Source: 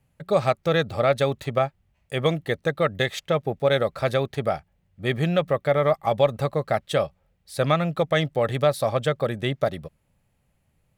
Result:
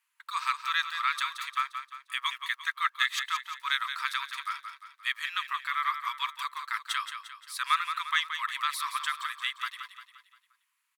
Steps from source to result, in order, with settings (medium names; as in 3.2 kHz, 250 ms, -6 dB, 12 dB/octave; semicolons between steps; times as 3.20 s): brick-wall FIR high-pass 910 Hz; feedback delay 175 ms, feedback 47%, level -8.5 dB